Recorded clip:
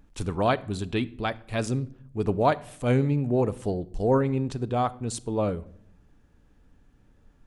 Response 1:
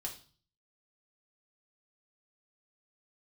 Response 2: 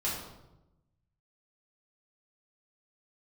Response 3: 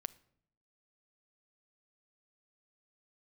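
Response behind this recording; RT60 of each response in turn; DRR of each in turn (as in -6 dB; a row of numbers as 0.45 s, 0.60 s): 3; 0.40 s, 0.95 s, 0.65 s; -1.0 dB, -8.0 dB, 15.0 dB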